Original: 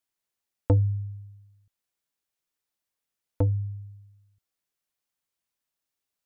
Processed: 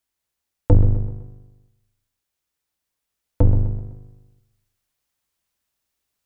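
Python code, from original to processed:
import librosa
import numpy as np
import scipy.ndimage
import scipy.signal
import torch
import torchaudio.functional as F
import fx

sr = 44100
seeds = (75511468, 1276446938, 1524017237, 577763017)

p1 = fx.octave_divider(x, sr, octaves=2, level_db=3.0)
p2 = p1 + fx.echo_feedback(p1, sr, ms=127, feedback_pct=43, wet_db=-13.0, dry=0)
p3 = fx.rider(p2, sr, range_db=10, speed_s=2.0)
y = p3 * 10.0 ** (7.5 / 20.0)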